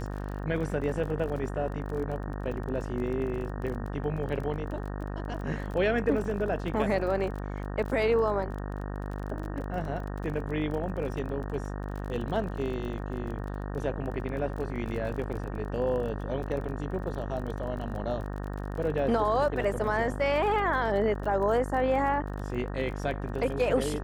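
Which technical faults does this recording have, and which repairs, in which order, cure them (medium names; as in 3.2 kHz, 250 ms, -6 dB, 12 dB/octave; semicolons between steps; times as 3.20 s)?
buzz 50 Hz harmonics 37 -35 dBFS
crackle 30 per s -36 dBFS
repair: de-click; de-hum 50 Hz, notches 37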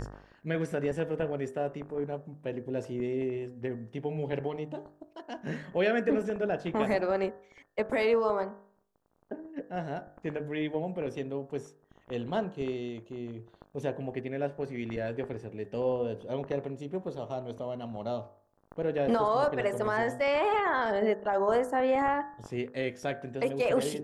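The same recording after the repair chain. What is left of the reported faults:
nothing left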